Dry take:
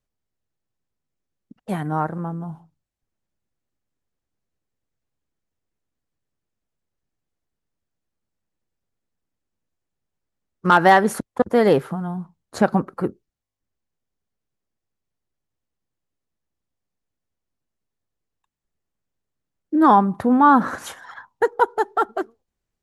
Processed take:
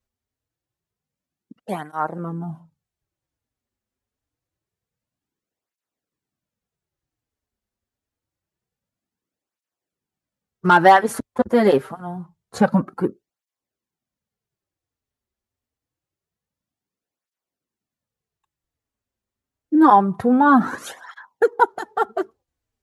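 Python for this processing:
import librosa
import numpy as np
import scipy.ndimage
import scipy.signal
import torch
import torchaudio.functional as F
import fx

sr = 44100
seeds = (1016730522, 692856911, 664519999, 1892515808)

y = fx.flanger_cancel(x, sr, hz=0.26, depth_ms=6.9)
y = y * librosa.db_to_amplitude(3.0)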